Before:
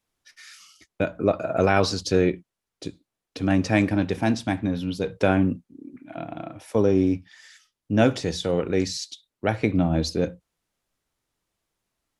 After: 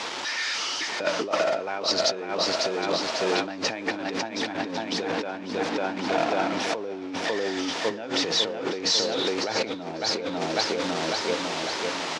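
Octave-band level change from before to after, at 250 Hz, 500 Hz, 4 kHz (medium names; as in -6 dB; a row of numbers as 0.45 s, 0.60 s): -7.0 dB, -1.5 dB, +10.0 dB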